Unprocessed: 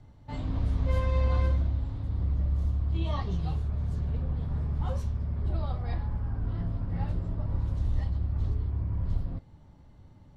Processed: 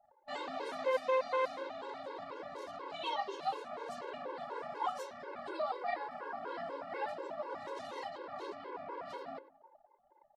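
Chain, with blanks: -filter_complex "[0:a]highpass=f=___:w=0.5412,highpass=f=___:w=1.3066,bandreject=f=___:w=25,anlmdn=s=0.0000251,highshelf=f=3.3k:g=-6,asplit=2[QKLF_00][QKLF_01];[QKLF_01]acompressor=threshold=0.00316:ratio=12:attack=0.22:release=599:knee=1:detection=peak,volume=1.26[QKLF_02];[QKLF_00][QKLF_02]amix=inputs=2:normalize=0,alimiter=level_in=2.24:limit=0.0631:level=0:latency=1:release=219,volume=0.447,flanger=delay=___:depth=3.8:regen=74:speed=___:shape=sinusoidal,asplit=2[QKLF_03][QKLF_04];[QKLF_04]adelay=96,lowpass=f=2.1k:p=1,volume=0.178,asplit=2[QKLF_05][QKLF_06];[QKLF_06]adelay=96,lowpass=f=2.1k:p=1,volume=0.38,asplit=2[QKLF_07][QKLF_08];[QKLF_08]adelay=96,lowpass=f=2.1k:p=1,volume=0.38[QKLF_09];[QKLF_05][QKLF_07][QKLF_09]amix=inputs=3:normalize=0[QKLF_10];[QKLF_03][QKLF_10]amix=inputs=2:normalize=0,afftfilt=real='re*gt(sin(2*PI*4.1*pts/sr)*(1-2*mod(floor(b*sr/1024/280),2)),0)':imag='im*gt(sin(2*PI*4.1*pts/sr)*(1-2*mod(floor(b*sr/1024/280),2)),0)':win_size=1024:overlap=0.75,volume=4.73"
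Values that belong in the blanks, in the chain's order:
470, 470, 3.4k, 0.5, 0.39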